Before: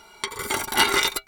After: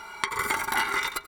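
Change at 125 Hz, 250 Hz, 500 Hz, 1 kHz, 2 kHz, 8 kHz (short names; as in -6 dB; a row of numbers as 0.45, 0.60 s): -5.5, -8.0, -8.5, -2.0, -2.0, -8.0 dB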